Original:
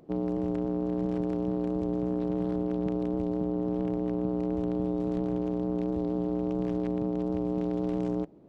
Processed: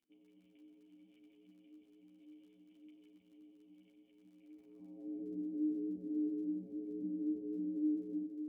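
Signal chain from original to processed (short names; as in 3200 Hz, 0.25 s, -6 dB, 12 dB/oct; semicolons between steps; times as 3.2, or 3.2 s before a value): vocal tract filter i; band-pass sweep 2900 Hz -> 370 Hz, 4.38–5.29; crackle 19/s -60 dBFS; on a send: multi-head echo 92 ms, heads all three, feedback 63%, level -15.5 dB; on the sum: ensemble effect; gain +2 dB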